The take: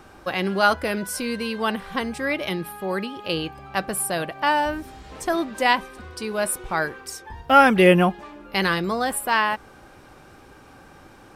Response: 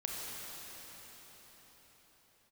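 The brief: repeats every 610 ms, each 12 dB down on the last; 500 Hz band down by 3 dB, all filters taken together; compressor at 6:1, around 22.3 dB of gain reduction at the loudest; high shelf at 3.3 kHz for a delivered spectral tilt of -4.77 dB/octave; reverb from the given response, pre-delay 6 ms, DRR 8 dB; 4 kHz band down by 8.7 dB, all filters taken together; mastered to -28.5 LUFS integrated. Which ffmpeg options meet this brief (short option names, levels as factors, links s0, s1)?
-filter_complex "[0:a]equalizer=f=500:t=o:g=-3.5,highshelf=f=3300:g=-8.5,equalizer=f=4000:t=o:g=-7,acompressor=threshold=0.0141:ratio=6,aecho=1:1:610|1220|1830:0.251|0.0628|0.0157,asplit=2[s0][s1];[1:a]atrim=start_sample=2205,adelay=6[s2];[s1][s2]afir=irnorm=-1:irlink=0,volume=0.282[s3];[s0][s3]amix=inputs=2:normalize=0,volume=3.76"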